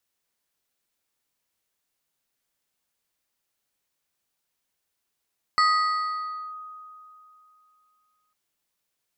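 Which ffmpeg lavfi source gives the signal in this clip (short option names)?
-f lavfi -i "aevalsrc='0.168*pow(10,-3*t/2.9)*sin(2*PI*1250*t+0.72*clip(1-t/0.96,0,1)*sin(2*PI*2.56*1250*t))':d=2.75:s=44100"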